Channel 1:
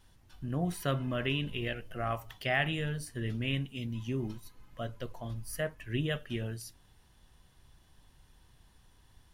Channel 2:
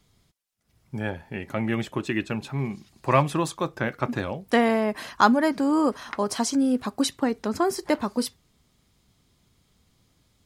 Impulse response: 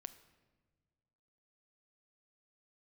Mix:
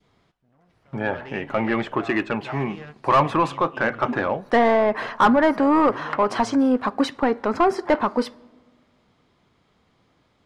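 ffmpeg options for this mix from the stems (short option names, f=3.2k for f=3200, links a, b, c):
-filter_complex "[0:a]alimiter=limit=-24dB:level=0:latency=1:release=387,asoftclip=type=hard:threshold=-35dB,volume=-6dB[a];[1:a]adynamicequalizer=threshold=0.0224:dfrequency=1200:dqfactor=0.73:tfrequency=1200:tqfactor=0.73:attack=5:release=100:ratio=0.375:range=2:mode=boostabove:tftype=bell,volume=-4dB,asplit=3[b][c][d];[c]volume=-5dB[e];[d]apad=whole_len=411852[f];[a][f]sidechaingate=range=-23dB:threshold=-54dB:ratio=16:detection=peak[g];[2:a]atrim=start_sample=2205[h];[e][h]afir=irnorm=-1:irlink=0[i];[g][b][i]amix=inputs=3:normalize=0,aemphasis=mode=reproduction:type=50kf,asplit=2[j][k];[k]highpass=f=720:p=1,volume=20dB,asoftclip=type=tanh:threshold=-5.5dB[l];[j][l]amix=inputs=2:normalize=0,lowpass=f=1.2k:p=1,volume=-6dB"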